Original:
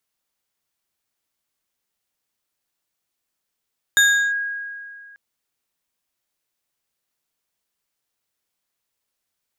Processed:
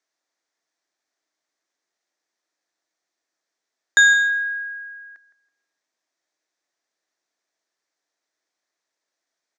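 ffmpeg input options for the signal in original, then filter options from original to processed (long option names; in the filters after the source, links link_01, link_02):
-f lavfi -i "aevalsrc='0.316*pow(10,-3*t/2.18)*sin(2*PI*1640*t+0.95*clip(1-t/0.36,0,1)*sin(2*PI*3.24*1640*t))':duration=1.19:sample_rate=44100"
-filter_complex "[0:a]highpass=frequency=200:width=0.5412,highpass=frequency=200:width=1.3066,equalizer=frequency=210:width_type=q:width=4:gain=-9,equalizer=frequency=320:width_type=q:width=4:gain=5,equalizer=frequency=660:width_type=q:width=4:gain=6,equalizer=frequency=1800:width_type=q:width=4:gain=6,equalizer=frequency=2900:width_type=q:width=4:gain=-7,equalizer=frequency=6000:width_type=q:width=4:gain=4,lowpass=frequency=6900:width=0.5412,lowpass=frequency=6900:width=1.3066,asplit=2[link_01][link_02];[link_02]adelay=163,lowpass=frequency=2000:poles=1,volume=-12.5dB,asplit=2[link_03][link_04];[link_04]adelay=163,lowpass=frequency=2000:poles=1,volume=0.36,asplit=2[link_05][link_06];[link_06]adelay=163,lowpass=frequency=2000:poles=1,volume=0.36,asplit=2[link_07][link_08];[link_08]adelay=163,lowpass=frequency=2000:poles=1,volume=0.36[link_09];[link_01][link_03][link_05][link_07][link_09]amix=inputs=5:normalize=0"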